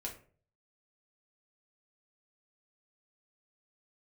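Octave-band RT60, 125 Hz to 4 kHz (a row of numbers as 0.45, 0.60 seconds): 0.70, 0.50, 0.50, 0.40, 0.35, 0.25 seconds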